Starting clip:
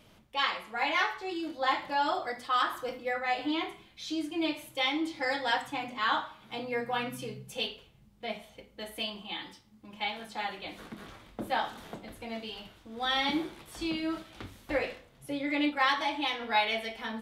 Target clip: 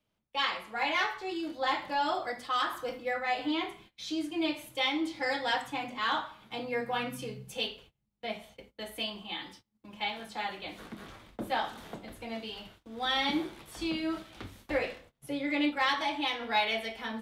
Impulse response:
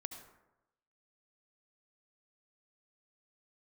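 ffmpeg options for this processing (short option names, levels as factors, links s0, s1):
-filter_complex "[0:a]agate=range=0.0794:threshold=0.002:ratio=16:detection=peak,acrossover=split=130|840|1800[s0][s1][s2][s3];[s2]asoftclip=type=tanh:threshold=0.0266[s4];[s0][s1][s4][s3]amix=inputs=4:normalize=0"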